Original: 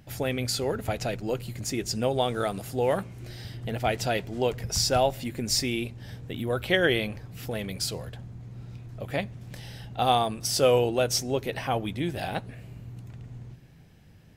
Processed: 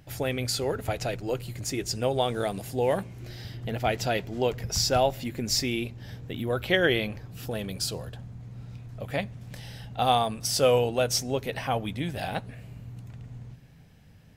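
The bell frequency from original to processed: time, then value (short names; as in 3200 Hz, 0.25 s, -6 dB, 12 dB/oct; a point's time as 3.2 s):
bell -9 dB 0.21 oct
220 Hz
from 2.3 s 1300 Hz
from 3.12 s 9000 Hz
from 7.3 s 2100 Hz
from 8.18 s 350 Hz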